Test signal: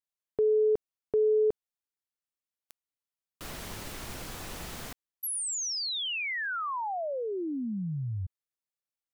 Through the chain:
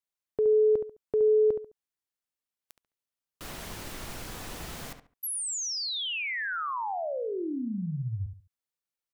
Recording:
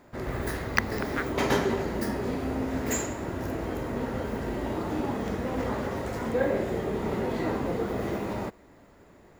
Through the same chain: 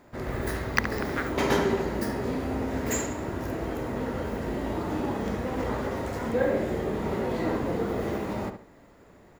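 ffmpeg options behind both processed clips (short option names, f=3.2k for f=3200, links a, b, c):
-filter_complex "[0:a]asplit=2[a][b];[b]adelay=70,lowpass=f=2.6k:p=1,volume=-7.5dB,asplit=2[c][d];[d]adelay=70,lowpass=f=2.6k:p=1,volume=0.28,asplit=2[e][f];[f]adelay=70,lowpass=f=2.6k:p=1,volume=0.28[g];[a][c][e][g]amix=inputs=4:normalize=0"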